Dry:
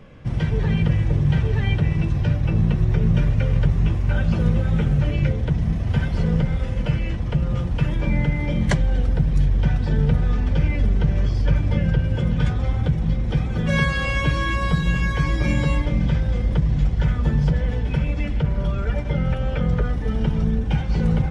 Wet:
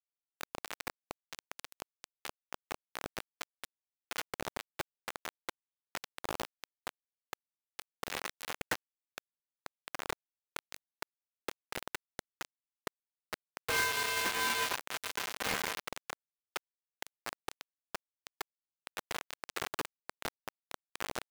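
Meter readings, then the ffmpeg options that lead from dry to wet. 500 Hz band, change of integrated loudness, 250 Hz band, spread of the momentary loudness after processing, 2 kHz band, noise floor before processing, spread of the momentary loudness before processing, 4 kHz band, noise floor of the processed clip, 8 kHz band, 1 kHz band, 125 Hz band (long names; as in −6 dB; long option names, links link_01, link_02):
−15.5 dB, −18.0 dB, −29.0 dB, 18 LU, −8.5 dB, −25 dBFS, 4 LU, −4.5 dB, below −85 dBFS, can't be measured, −7.5 dB, below −40 dB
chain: -filter_complex "[0:a]asplit=2[link_01][link_02];[link_02]aecho=0:1:117|234|351|468|585:0.119|0.0642|0.0347|0.0187|0.0101[link_03];[link_01][link_03]amix=inputs=2:normalize=0,highpass=frequency=250:width_type=q:width=0.5412,highpass=frequency=250:width_type=q:width=1.307,lowpass=frequency=2200:width_type=q:width=0.5176,lowpass=frequency=2200:width_type=q:width=0.7071,lowpass=frequency=2200:width_type=q:width=1.932,afreqshift=-95,acrusher=bits=3:mix=0:aa=0.000001,lowshelf=frequency=420:gain=-10,asoftclip=type=tanh:threshold=-25dB"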